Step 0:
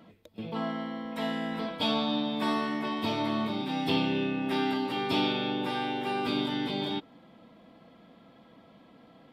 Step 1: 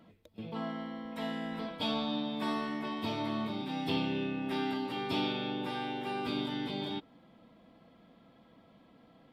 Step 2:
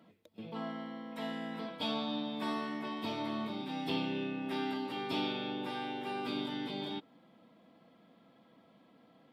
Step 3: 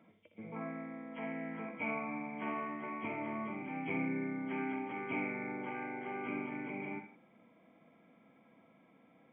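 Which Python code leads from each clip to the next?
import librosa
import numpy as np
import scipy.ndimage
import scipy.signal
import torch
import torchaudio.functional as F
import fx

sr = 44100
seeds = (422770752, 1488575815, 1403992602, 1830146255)

y1 = fx.low_shelf(x, sr, hz=83.0, db=8.0)
y1 = F.gain(torch.from_numpy(y1), -5.5).numpy()
y2 = scipy.signal.sosfilt(scipy.signal.butter(2, 150.0, 'highpass', fs=sr, output='sos'), y1)
y2 = F.gain(torch.from_numpy(y2), -2.0).numpy()
y3 = fx.freq_compress(y2, sr, knee_hz=2000.0, ratio=4.0)
y3 = fx.echo_multitap(y3, sr, ms=(60, 79, 120, 162), db=(-9.5, -13.5, -20.0, -19.5))
y3 = F.gain(torch.from_numpy(y3), -2.5).numpy()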